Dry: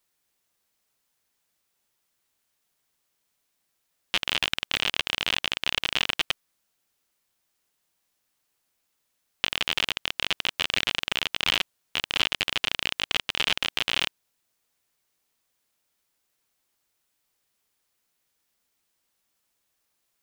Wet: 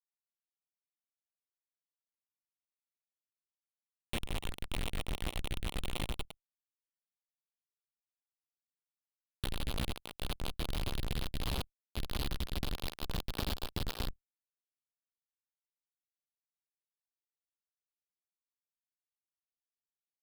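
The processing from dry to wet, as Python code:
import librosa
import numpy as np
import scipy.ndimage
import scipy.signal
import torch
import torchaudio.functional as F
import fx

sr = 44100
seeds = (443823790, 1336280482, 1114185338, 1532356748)

y = fx.pitch_glide(x, sr, semitones=9.0, runs='starting unshifted')
y = fx.schmitt(y, sr, flips_db=-22.5)
y = fx.level_steps(y, sr, step_db=14)
y = y * librosa.db_to_amplitude(8.5)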